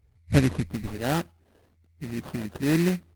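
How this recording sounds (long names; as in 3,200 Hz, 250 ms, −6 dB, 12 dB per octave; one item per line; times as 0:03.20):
phaser sweep stages 4, 1.1 Hz, lowest notch 680–3,500 Hz
aliases and images of a low sample rate 2,200 Hz, jitter 20%
Opus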